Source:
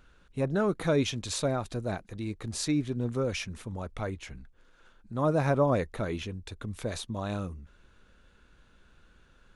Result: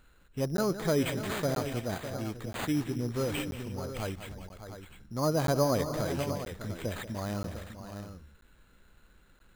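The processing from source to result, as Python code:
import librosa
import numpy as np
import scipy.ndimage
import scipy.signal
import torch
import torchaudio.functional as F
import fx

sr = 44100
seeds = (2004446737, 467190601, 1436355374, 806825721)

y = fx.echo_multitap(x, sr, ms=(185, 296, 602, 700), db=(-12.5, -18.5, -11.0, -11.0))
y = np.repeat(y[::8], 8)[:len(y)]
y = fx.buffer_crackle(y, sr, first_s=0.57, period_s=0.98, block=512, kind='zero')
y = y * librosa.db_to_amplitude(-2.0)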